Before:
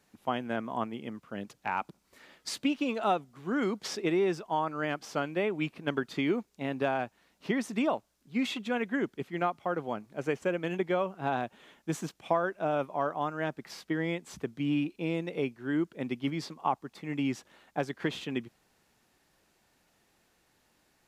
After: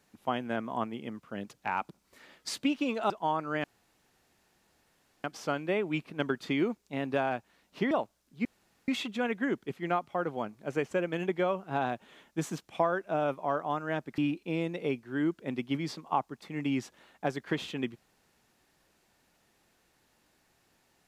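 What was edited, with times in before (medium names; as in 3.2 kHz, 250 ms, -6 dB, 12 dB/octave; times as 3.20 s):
3.10–4.38 s: delete
4.92 s: insert room tone 1.60 s
7.59–7.85 s: delete
8.39 s: insert room tone 0.43 s
13.69–14.71 s: delete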